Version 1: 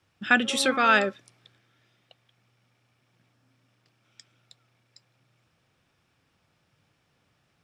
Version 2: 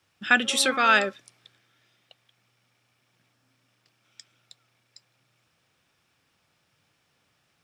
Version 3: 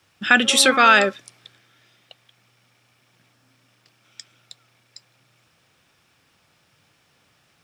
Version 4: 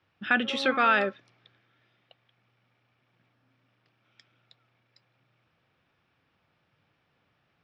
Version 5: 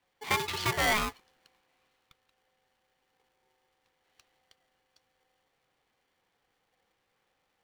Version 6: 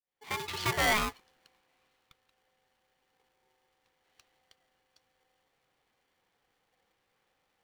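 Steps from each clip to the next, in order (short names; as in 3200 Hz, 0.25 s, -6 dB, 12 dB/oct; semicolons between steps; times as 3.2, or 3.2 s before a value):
tilt +1.5 dB/oct
limiter -10.5 dBFS, peak gain reduction 4.5 dB; gain +8 dB
air absorption 290 m; gain -7 dB
polarity switched at an audio rate 640 Hz; gain -4.5 dB
opening faded in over 0.76 s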